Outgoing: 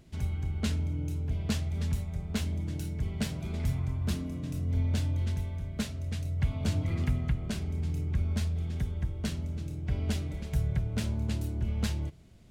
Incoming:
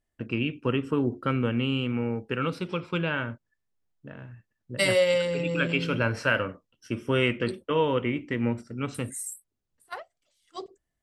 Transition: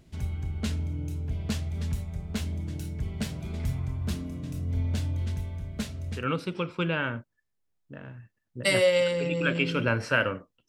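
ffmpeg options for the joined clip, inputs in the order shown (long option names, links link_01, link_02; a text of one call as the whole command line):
ffmpeg -i cue0.wav -i cue1.wav -filter_complex "[0:a]apad=whole_dur=10.68,atrim=end=10.68,atrim=end=6.27,asetpts=PTS-STARTPTS[link_01];[1:a]atrim=start=2.27:end=6.82,asetpts=PTS-STARTPTS[link_02];[link_01][link_02]acrossfade=duration=0.14:curve1=tri:curve2=tri" out.wav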